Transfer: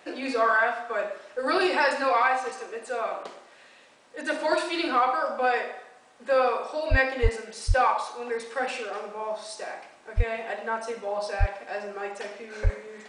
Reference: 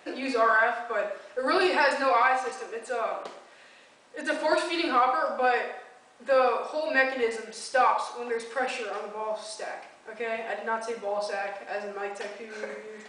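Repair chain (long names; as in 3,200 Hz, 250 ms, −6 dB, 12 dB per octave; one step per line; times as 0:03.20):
high-pass at the plosives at 0:06.90/0:07.22/0:07.67/0:10.16/0:11.39/0:12.63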